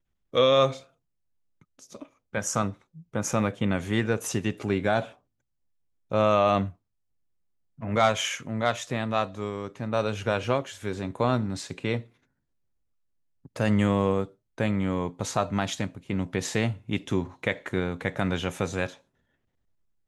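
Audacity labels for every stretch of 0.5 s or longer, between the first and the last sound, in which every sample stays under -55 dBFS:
0.890000	1.610000	silence
5.180000	6.110000	silence
6.750000	7.780000	silence
12.150000	13.450000	silence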